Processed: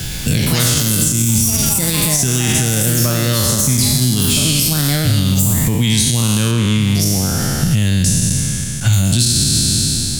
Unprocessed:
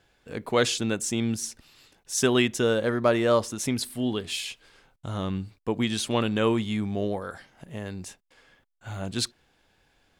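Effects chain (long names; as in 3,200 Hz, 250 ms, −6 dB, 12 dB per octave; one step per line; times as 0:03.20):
peak hold with a decay on every bin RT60 1.79 s
delay with pitch and tempo change per echo 114 ms, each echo +5 semitones, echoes 3, each echo −6 dB
0:06.51–0:08.93: high-shelf EQ 6,000 Hz −10 dB
downward compressor 3 to 1, threshold −38 dBFS, peak gain reduction 18 dB
drawn EQ curve 140 Hz 0 dB, 450 Hz −22 dB, 1,100 Hz −22 dB, 13,000 Hz +2 dB
boost into a limiter +35.5 dB
multiband upward and downward compressor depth 70%
level −3.5 dB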